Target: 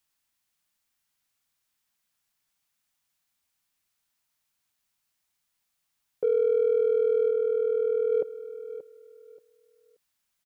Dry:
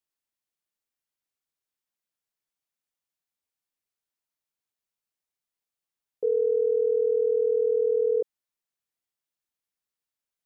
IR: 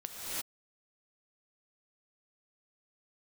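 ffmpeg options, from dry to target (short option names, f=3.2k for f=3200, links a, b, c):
-filter_complex "[0:a]asplit=3[a][b][c];[a]afade=t=out:st=7.29:d=0.02[d];[b]agate=range=-33dB:threshold=-20dB:ratio=3:detection=peak,afade=t=in:st=7.29:d=0.02,afade=t=out:st=8.11:d=0.02[e];[c]afade=t=in:st=8.11:d=0.02[f];[d][e][f]amix=inputs=3:normalize=0,equalizer=f=440:t=o:w=1.1:g=-9.5,asplit=2[g][h];[h]asoftclip=type=tanh:threshold=-38dB,volume=-8.5dB[i];[g][i]amix=inputs=2:normalize=0,aecho=1:1:580|1160|1740:0.211|0.0486|0.0112,volume=8.5dB"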